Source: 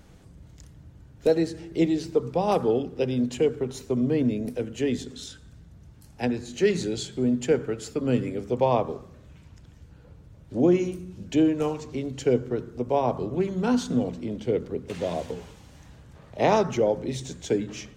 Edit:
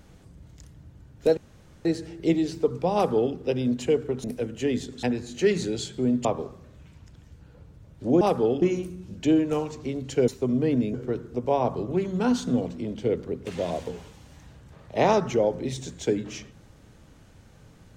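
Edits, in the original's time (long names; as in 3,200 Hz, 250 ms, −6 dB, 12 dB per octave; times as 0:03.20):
0:01.37: splice in room tone 0.48 s
0:02.46–0:02.87: duplicate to 0:10.71
0:03.76–0:04.42: move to 0:12.37
0:05.21–0:06.22: remove
0:07.44–0:08.75: remove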